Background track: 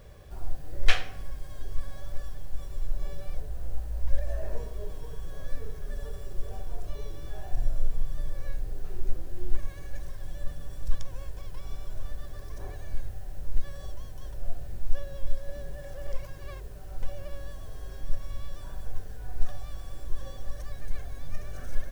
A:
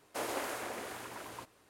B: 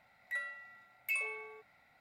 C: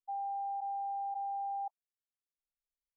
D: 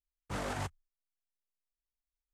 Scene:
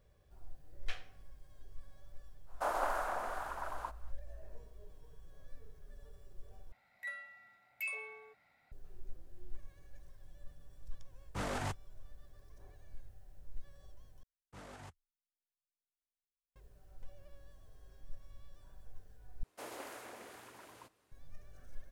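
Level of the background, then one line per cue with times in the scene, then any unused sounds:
background track -18.5 dB
2.46 s: add A -8.5 dB, fades 0.05 s + high-order bell 960 Hz +14.5 dB
6.72 s: replace with B -4.5 dB
11.05 s: add D -1 dB
14.23 s: replace with D -15 dB
19.43 s: replace with A -10 dB
not used: C

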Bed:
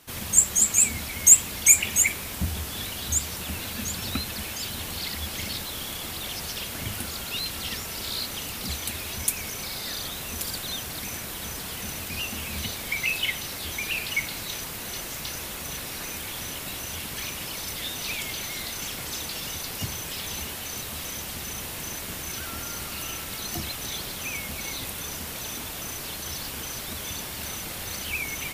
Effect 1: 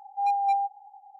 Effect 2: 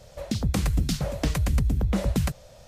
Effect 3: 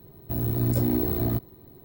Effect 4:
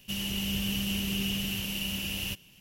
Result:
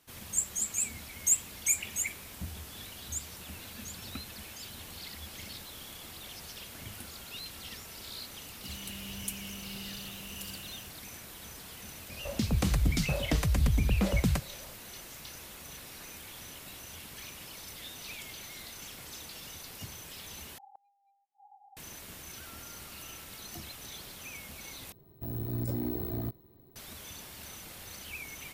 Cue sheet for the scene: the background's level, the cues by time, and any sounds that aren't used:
bed -12 dB
8.55 s: add 4 -13 dB + fade out at the end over 0.61 s
12.08 s: add 2 -3 dB
20.58 s: replace with 1 -7.5 dB + inverted gate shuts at -33 dBFS, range -40 dB
24.92 s: replace with 3 -9.5 dB

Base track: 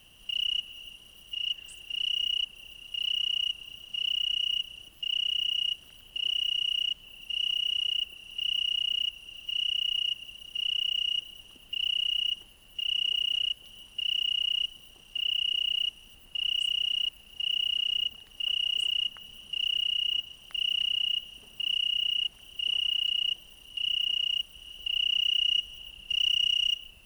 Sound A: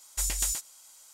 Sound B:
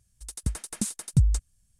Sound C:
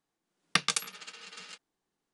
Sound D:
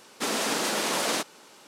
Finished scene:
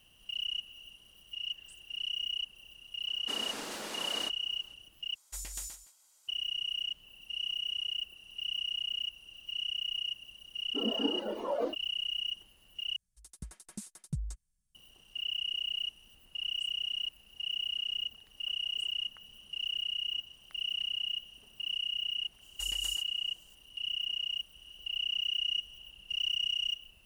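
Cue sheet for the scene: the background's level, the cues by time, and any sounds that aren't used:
base track -6.5 dB
3.07 s: add D -13.5 dB
5.15 s: replace with A -12 dB + delay 166 ms -14 dB
10.53 s: add D -4 dB + spectral contrast expander 4:1
12.96 s: replace with B -15.5 dB + comb 5.4 ms, depth 45%
22.42 s: add A -13 dB
not used: C

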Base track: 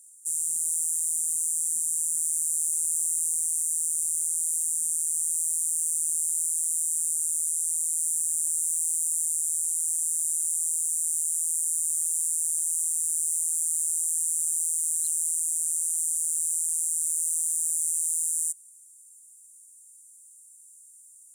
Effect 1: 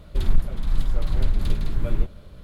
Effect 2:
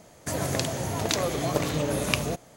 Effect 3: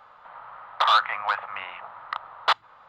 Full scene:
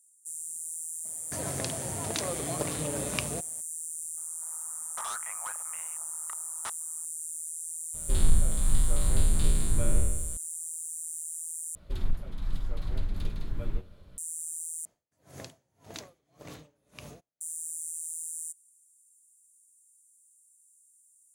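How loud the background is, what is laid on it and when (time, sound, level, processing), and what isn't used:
base track -10.5 dB
1.05 s: add 2 -7 dB
4.17 s: add 3 -16 dB + wavefolder -15 dBFS
7.94 s: add 1 -5 dB + spectral sustain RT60 1.12 s
11.75 s: replace with 1 -4 dB + feedback comb 93 Hz, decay 0.25 s
14.85 s: replace with 2 -15.5 dB + logarithmic tremolo 1.8 Hz, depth 33 dB

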